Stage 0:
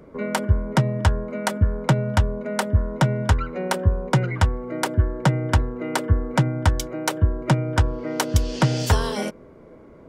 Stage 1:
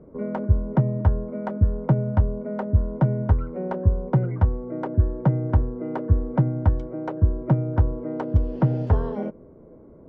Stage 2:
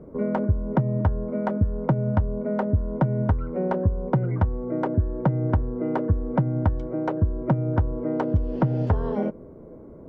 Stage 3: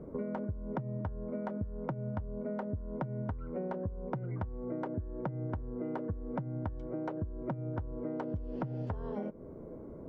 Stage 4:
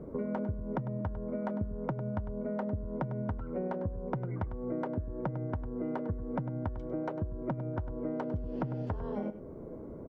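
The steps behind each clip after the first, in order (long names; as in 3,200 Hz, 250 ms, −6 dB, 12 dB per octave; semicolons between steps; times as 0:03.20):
Bessel low-pass filter 590 Hz, order 2
downward compressor 5 to 1, threshold −22 dBFS, peak gain reduction 10 dB; level +4 dB
downward compressor 6 to 1, threshold −32 dBFS, peak gain reduction 15.5 dB; level −2.5 dB
single-tap delay 101 ms −12.5 dB; level +2 dB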